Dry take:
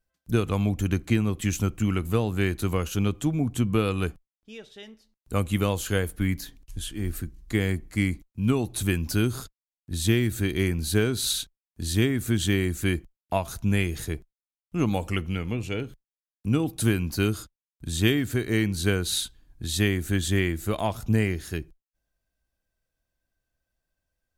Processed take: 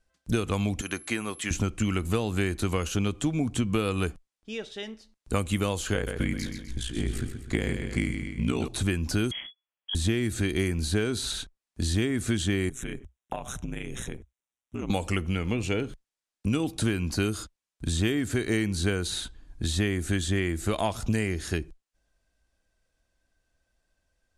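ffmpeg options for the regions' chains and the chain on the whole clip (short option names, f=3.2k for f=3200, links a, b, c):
-filter_complex "[0:a]asettb=1/sr,asplit=3[a][b][c];[a]atrim=end=0.814[d];[b]atrim=start=0.81:end=1.51,asetpts=PTS-STARTPTS,afade=t=in:d=0.004:c=qsin,afade=t=out:st=0.696:d=0.004:c=qsin,highpass=f=1.3k:p=1,aeval=exprs='val(0)+0.00447*sin(2*PI*11000*n/s)':c=same[e];[c]atrim=start=1.506[f];[d][e]acrossfade=d=0.004:c1=hsin:c2=qsin[g];[g][f]acrossfade=d=0.004:c1=qsin:c2=hsin,asettb=1/sr,asplit=3[h][i][j];[h]atrim=end=5.944[k];[i]atrim=start=5.94:end=8.68,asetpts=PTS-STARTPTS,afade=t=in:d=0.004:c=qsin,afade=t=out:st=2.736:d=0.004:c=qsin,highshelf=f=9.1k:g=-8.5,aeval=exprs='val(0)*sin(2*PI*29*n/s)':c=same,aecho=1:1:127|254|381|508|635:0.355|0.156|0.0687|0.0302|0.0133,atrim=end_sample=120834[l];[j]atrim=start=8.676[m];[k][l]acrossfade=d=0.004:c1=hsin:c2=qsin[n];[n][m]acrossfade=d=0.004:c1=qsin:c2=hsin,asettb=1/sr,asplit=3[o][p][q];[o]atrim=end=9.314[r];[p]atrim=start=9.31:end=9.95,asetpts=PTS-STARTPTS,afade=t=in:d=0.004:c=qsin,afade=t=out:st=0.636:d=0.004:c=qsin,lowpass=f=2.9k:t=q:w=0.5098,lowpass=f=2.9k:t=q:w=0.6013,lowpass=f=2.9k:t=q:w=0.9,lowpass=f=2.9k:t=q:w=2.563,afreqshift=-3400,asplit=2[s][t];[t]adelay=32,volume=-13dB[u];[s][u]amix=inputs=2:normalize=0,atrim=end_sample=28224[v];[q]atrim=start=9.946[w];[r][v]acrossfade=d=0.004:c1=hsin:c2=qsin[x];[x][w]acrossfade=d=0.004:c1=qsin:c2=hsin,asettb=1/sr,asplit=3[y][z][aa];[y]atrim=end=12.694[ab];[z]atrim=start=12.69:end=14.9,asetpts=PTS-STARTPTS,afade=t=in:d=0.004:c=qsin,afade=t=out:st=2.206:d=0.004:c=qsin,acompressor=threshold=-33dB:ratio=10:attack=3.2:release=140:knee=1:detection=peak,aeval=exprs='val(0)*sin(2*PI*62*n/s)':c=same,asuperstop=centerf=4600:order=8:qfactor=3[ac];[aa]atrim=start=14.896[ad];[ab][ac]acrossfade=d=0.004:c1=hsin:c2=qsin[ae];[ae][ad]acrossfade=d=0.004:c1=qsin:c2=hsin,lowpass=f=9.9k:w=0.5412,lowpass=f=9.9k:w=1.3066,equalizer=f=130:t=o:w=0.77:g=-5,acrossover=split=2000|6900[af][ag][ah];[af]acompressor=threshold=-32dB:ratio=4[ai];[ag]acompressor=threshold=-45dB:ratio=4[aj];[ah]acompressor=threshold=-49dB:ratio=4[ak];[ai][aj][ak]amix=inputs=3:normalize=0,volume=7.5dB"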